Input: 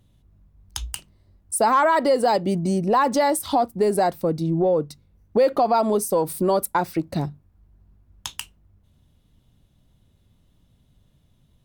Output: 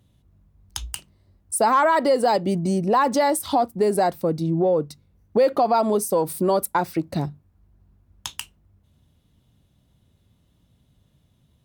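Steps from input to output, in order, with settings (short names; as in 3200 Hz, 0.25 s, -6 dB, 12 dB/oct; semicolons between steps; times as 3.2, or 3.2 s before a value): HPF 52 Hz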